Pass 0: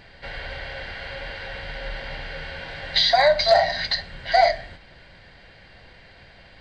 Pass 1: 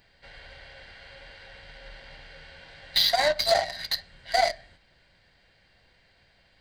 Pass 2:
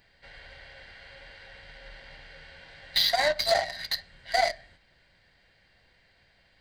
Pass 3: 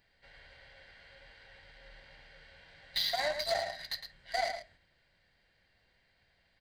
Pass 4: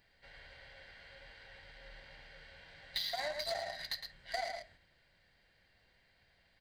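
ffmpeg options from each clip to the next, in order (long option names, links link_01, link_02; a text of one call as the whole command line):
ffmpeg -i in.wav -af "aemphasis=mode=production:type=50fm,aeval=exprs='0.631*(cos(1*acos(clip(val(0)/0.631,-1,1)))-cos(1*PI/2))+0.0562*(cos(7*acos(clip(val(0)/0.631,-1,1)))-cos(7*PI/2))':channel_layout=same,volume=-6dB" out.wav
ffmpeg -i in.wav -af "equalizer=frequency=1900:width_type=o:width=0.4:gain=3,volume=-2dB" out.wav
ffmpeg -i in.wav -filter_complex "[0:a]asplit=2[link_01][link_02];[link_02]adelay=110.8,volume=-8dB,highshelf=frequency=4000:gain=-2.49[link_03];[link_01][link_03]amix=inputs=2:normalize=0,volume=-8.5dB" out.wav
ffmpeg -i in.wav -af "acompressor=threshold=-36dB:ratio=4,volume=1dB" out.wav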